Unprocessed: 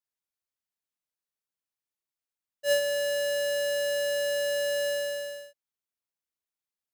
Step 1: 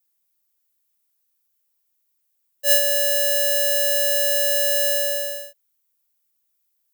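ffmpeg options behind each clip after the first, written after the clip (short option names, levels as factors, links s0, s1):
-filter_complex "[0:a]acrossover=split=420|1000|2800[s0][s1][s2][s3];[s1]alimiter=level_in=2.82:limit=0.0631:level=0:latency=1,volume=0.355[s4];[s0][s4][s2][s3]amix=inputs=4:normalize=0,aemphasis=mode=production:type=50fm,volume=1.88"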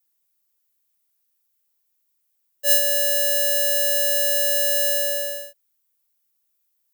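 -filter_complex "[0:a]acrossover=split=210|3000[s0][s1][s2];[s1]acompressor=threshold=0.0631:ratio=6[s3];[s0][s3][s2]amix=inputs=3:normalize=0"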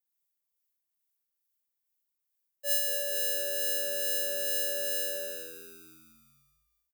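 -filter_complex "[0:a]acrossover=split=1400[s0][s1];[s0]aeval=exprs='val(0)*(1-0.5/2+0.5/2*cos(2*PI*2.3*n/s))':c=same[s2];[s1]aeval=exprs='val(0)*(1-0.5/2-0.5/2*cos(2*PI*2.3*n/s))':c=same[s3];[s2][s3]amix=inputs=2:normalize=0,asplit=2[s4][s5];[s5]asplit=6[s6][s7][s8][s9][s10][s11];[s6]adelay=230,afreqshift=-87,volume=0.316[s12];[s7]adelay=460,afreqshift=-174,volume=0.164[s13];[s8]adelay=690,afreqshift=-261,volume=0.0851[s14];[s9]adelay=920,afreqshift=-348,volume=0.0447[s15];[s10]adelay=1150,afreqshift=-435,volume=0.0232[s16];[s11]adelay=1380,afreqshift=-522,volume=0.012[s17];[s12][s13][s14][s15][s16][s17]amix=inputs=6:normalize=0[s18];[s4][s18]amix=inputs=2:normalize=0,volume=0.355"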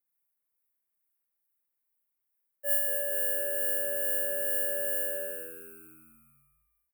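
-af "asuperstop=centerf=4700:order=8:qfactor=0.78,volume=1.19"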